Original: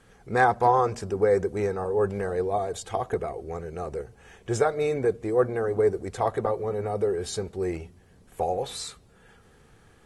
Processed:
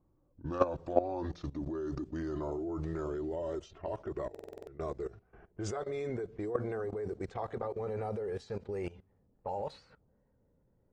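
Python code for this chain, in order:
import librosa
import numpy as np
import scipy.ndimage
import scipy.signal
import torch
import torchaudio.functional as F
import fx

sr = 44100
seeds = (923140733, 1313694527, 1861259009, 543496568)

y = fx.speed_glide(x, sr, from_pct=68, to_pct=116)
y = scipy.signal.sosfilt(scipy.signal.butter(2, 6600.0, 'lowpass', fs=sr, output='sos'), y)
y = fx.level_steps(y, sr, step_db=17)
y = fx.env_lowpass(y, sr, base_hz=530.0, full_db=-31.0)
y = fx.buffer_glitch(y, sr, at_s=(4.3,), block=2048, repeats=7)
y = F.gain(torch.from_numpy(y), -2.0).numpy()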